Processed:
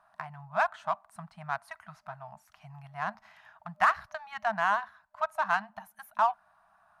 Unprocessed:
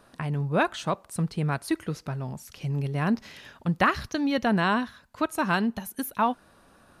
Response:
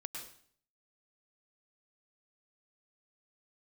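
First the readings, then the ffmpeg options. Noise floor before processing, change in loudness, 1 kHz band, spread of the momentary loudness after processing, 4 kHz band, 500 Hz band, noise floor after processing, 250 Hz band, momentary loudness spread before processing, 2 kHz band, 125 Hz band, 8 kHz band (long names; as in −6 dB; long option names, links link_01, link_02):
−58 dBFS, −3.0 dB, −0.5 dB, 21 LU, −11.0 dB, −6.5 dB, −68 dBFS, −23.5 dB, 10 LU, −2.0 dB, −20.0 dB, below −10 dB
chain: -filter_complex "[0:a]afftfilt=real='re*(1-between(b*sr/4096,220,610))':imag='im*(1-between(b*sr/4096,220,610))':win_size=4096:overlap=0.75,acrossover=split=570 2000:gain=0.0794 1 0.2[link_01][link_02][link_03];[link_01][link_02][link_03]amix=inputs=3:normalize=0,asplit=2[link_04][link_05];[link_05]adynamicsmooth=sensitivity=4:basefreq=1500,volume=2dB[link_06];[link_04][link_06]amix=inputs=2:normalize=0,volume=-5.5dB"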